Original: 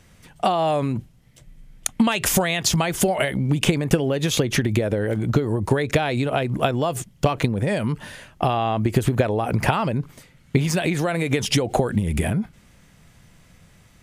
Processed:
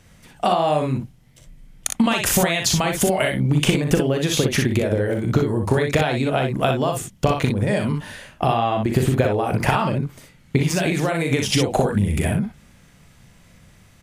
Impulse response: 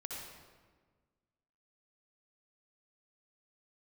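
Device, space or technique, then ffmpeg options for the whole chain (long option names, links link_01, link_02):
slapback doubling: -filter_complex "[0:a]asplit=3[link_01][link_02][link_03];[link_02]adelay=39,volume=-8dB[link_04];[link_03]adelay=60,volume=-5dB[link_05];[link_01][link_04][link_05]amix=inputs=3:normalize=0"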